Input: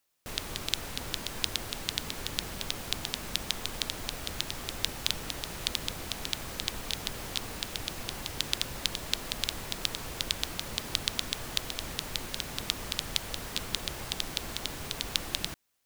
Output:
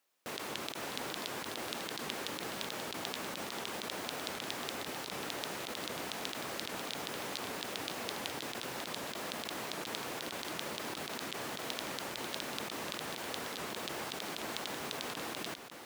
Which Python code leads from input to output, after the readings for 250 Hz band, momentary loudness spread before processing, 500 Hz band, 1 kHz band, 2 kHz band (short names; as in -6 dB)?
-0.5 dB, 5 LU, +2.0 dB, +2.0 dB, -1.5 dB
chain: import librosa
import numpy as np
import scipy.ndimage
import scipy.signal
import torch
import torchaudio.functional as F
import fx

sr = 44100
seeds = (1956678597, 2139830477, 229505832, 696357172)

y = fx.over_compress(x, sr, threshold_db=-36.0, ratio=-1.0)
y = scipy.signal.sosfilt(scipy.signal.butter(2, 250.0, 'highpass', fs=sr, output='sos'), y)
y = fx.high_shelf(y, sr, hz=3500.0, db=-7.0)
y = y + 10.0 ** (-8.5 / 20.0) * np.pad(y, (int(541 * sr / 1000.0), 0))[:len(y)]
y = fx.record_warp(y, sr, rpm=78.0, depth_cents=160.0)
y = y * 10.0 ** (1.0 / 20.0)